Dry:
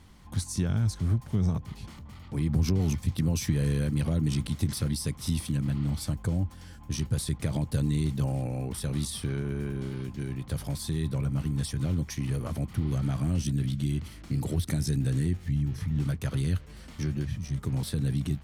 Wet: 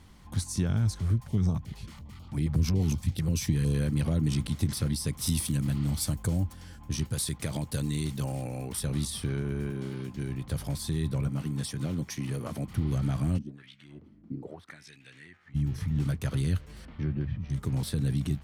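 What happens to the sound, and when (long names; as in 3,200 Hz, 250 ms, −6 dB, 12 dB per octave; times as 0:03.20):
0:01.01–0:03.74: notch on a step sequencer 11 Hz 250–1,900 Hz
0:05.13–0:06.53: high-shelf EQ 5,500 Hz +10.5 dB
0:07.04–0:08.81: spectral tilt +1.5 dB per octave
0:09.70–0:10.16: high-pass filter 120 Hz
0:11.28–0:12.67: high-pass filter 140 Hz
0:13.37–0:15.54: auto-filter band-pass sine 1.7 Hz → 0.28 Hz 210–2,500 Hz
0:16.85–0:17.50: high-frequency loss of the air 380 metres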